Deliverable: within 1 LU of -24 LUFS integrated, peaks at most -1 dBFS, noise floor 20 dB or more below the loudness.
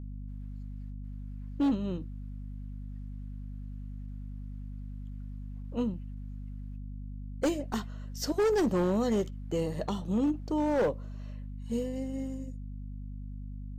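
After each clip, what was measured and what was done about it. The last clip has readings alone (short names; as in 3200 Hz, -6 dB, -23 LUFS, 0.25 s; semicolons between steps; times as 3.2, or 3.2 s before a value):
clipped 1.4%; flat tops at -22.5 dBFS; hum 50 Hz; harmonics up to 250 Hz; hum level -38 dBFS; loudness -34.5 LUFS; peak -22.5 dBFS; loudness target -24.0 LUFS
-> clip repair -22.5 dBFS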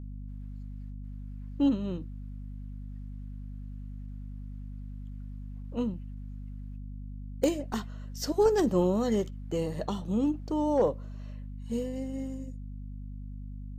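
clipped 0.0%; hum 50 Hz; harmonics up to 250 Hz; hum level -37 dBFS
-> notches 50/100/150/200/250 Hz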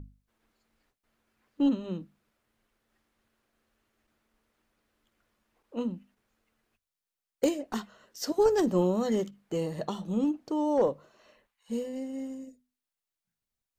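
hum none; loudness -30.0 LUFS; peak -13.0 dBFS; loudness target -24.0 LUFS
-> gain +6 dB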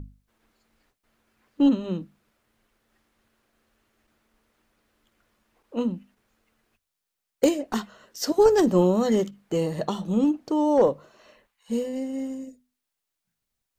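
loudness -24.0 LUFS; peak -7.0 dBFS; noise floor -83 dBFS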